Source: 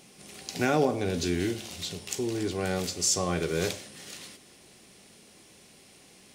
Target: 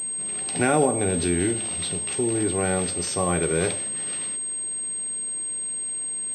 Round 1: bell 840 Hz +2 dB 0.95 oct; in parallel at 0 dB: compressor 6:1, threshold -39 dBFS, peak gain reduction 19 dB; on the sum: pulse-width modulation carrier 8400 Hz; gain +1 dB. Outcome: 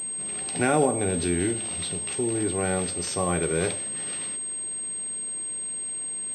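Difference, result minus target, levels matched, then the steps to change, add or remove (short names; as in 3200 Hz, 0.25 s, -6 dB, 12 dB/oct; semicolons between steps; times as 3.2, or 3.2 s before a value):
compressor: peak gain reduction +8 dB
change: compressor 6:1, threshold -29.5 dBFS, peak gain reduction 11 dB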